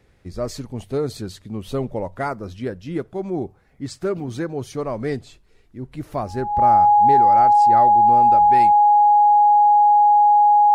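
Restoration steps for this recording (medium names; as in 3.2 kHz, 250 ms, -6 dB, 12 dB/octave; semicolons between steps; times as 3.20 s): band-stop 830 Hz, Q 30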